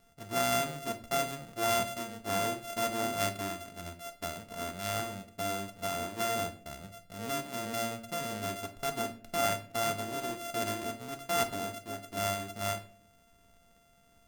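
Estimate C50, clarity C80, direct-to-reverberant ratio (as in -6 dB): 13.0 dB, 18.0 dB, 6.0 dB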